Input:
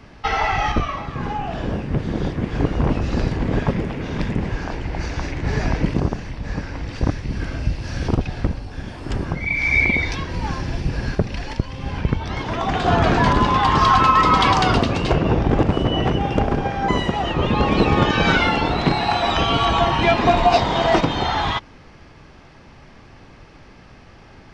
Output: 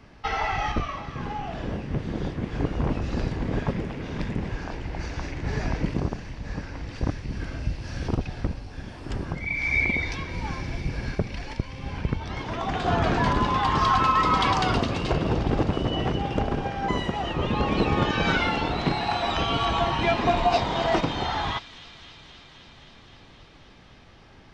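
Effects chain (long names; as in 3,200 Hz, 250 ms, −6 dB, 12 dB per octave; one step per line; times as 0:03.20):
delay with a high-pass on its return 262 ms, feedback 81%, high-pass 2,500 Hz, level −14 dB
level −6.5 dB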